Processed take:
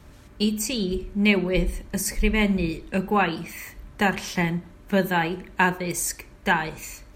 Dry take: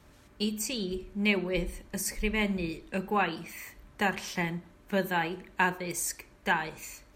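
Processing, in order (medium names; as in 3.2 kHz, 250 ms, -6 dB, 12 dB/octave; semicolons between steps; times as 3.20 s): bass shelf 190 Hz +6.5 dB; trim +5.5 dB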